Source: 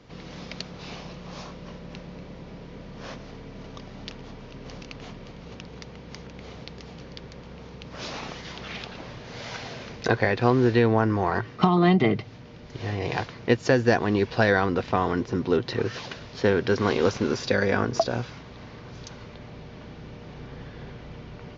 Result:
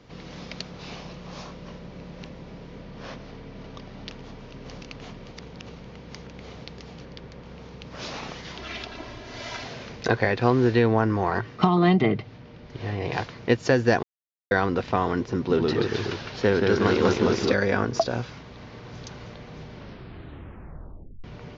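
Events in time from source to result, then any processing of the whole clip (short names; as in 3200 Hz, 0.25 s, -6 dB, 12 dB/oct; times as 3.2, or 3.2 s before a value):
1.89–2.3 reverse
2.81–4.11 LPF 6000 Hz
5.34–5.87 reverse
7.05–7.46 high shelf 4300 Hz -6.5 dB
8.58–9.65 comb 3 ms
12.01–13.13 air absorption 100 m
14.03–14.51 mute
15.38–17.54 echoes that change speed 0.113 s, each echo -1 st, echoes 2
18.41–19.02 echo throw 0.31 s, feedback 85%, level -5.5 dB
19.75 tape stop 1.49 s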